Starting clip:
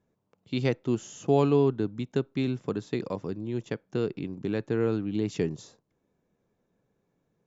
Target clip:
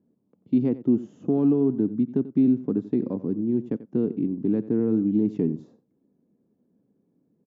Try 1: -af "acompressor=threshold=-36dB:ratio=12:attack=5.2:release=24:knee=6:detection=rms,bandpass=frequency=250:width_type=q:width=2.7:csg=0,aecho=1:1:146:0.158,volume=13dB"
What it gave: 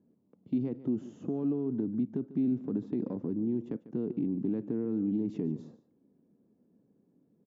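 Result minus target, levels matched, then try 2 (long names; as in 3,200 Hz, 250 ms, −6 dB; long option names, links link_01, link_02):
echo 57 ms late; downward compressor: peak gain reduction +11 dB
-af "acompressor=threshold=-24dB:ratio=12:attack=5.2:release=24:knee=6:detection=rms,bandpass=frequency=250:width_type=q:width=2.7:csg=0,aecho=1:1:89:0.158,volume=13dB"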